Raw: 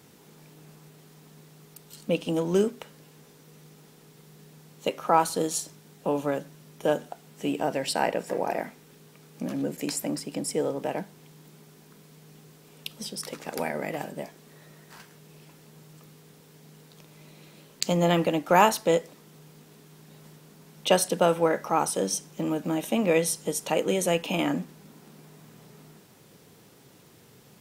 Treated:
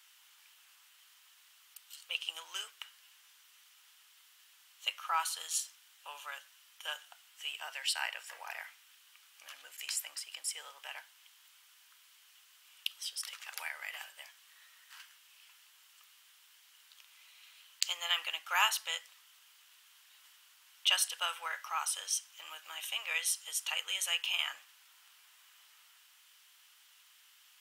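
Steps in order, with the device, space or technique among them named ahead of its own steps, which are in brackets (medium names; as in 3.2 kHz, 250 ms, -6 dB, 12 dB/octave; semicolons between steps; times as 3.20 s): headphones lying on a table (high-pass 1.2 kHz 24 dB/octave; peaking EQ 3 kHz +8.5 dB 0.33 oct); trim -4 dB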